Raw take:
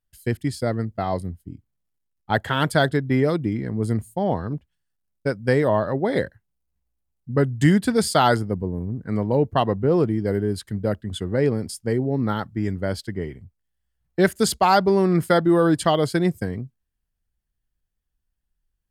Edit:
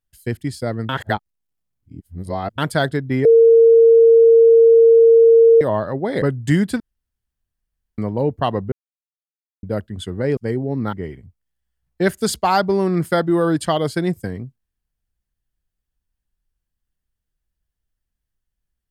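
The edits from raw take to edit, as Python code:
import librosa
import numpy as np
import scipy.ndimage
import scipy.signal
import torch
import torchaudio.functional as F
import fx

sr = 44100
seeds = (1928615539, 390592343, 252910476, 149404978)

y = fx.edit(x, sr, fx.reverse_span(start_s=0.89, length_s=1.69),
    fx.bleep(start_s=3.25, length_s=2.36, hz=458.0, db=-6.5),
    fx.cut(start_s=6.22, length_s=1.14),
    fx.room_tone_fill(start_s=7.94, length_s=1.18),
    fx.silence(start_s=9.86, length_s=0.91),
    fx.cut(start_s=11.51, length_s=0.28),
    fx.cut(start_s=12.35, length_s=0.76), tone=tone)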